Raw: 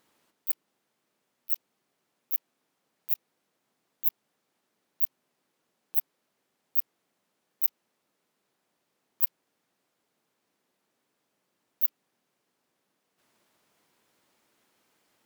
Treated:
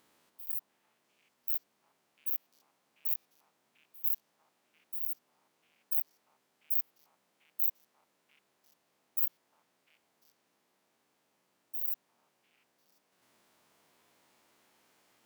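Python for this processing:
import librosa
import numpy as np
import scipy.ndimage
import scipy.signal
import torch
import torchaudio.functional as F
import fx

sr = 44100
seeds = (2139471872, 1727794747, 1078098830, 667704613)

y = fx.spec_steps(x, sr, hold_ms=100)
y = fx.echo_stepped(y, sr, ms=348, hz=830.0, octaves=1.4, feedback_pct=70, wet_db=-1.0)
y = y * librosa.db_to_amplitude(2.5)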